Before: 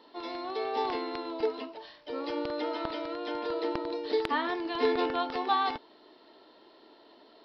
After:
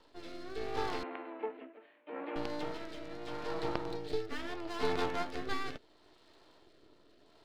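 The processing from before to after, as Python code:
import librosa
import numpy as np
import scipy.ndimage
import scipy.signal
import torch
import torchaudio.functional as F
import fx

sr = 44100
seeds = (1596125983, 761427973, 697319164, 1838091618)

y = np.maximum(x, 0.0)
y = fx.rotary(y, sr, hz=0.75)
y = fx.ellip_bandpass(y, sr, low_hz=250.0, high_hz=2500.0, order=3, stop_db=40, at=(1.03, 2.36))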